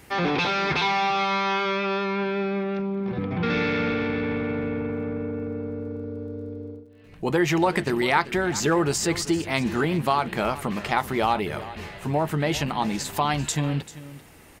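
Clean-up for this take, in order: de-click; inverse comb 0.391 s -16 dB

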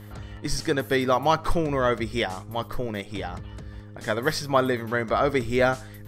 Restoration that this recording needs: de-click; de-hum 103.7 Hz, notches 5

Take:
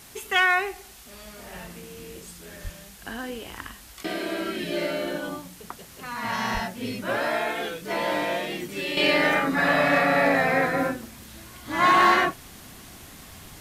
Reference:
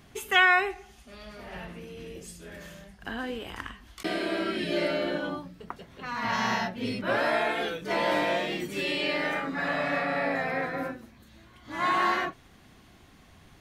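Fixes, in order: clip repair -11.5 dBFS; de-plosive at 2.63/6.53; noise print and reduce 9 dB; gain correction -8 dB, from 8.97

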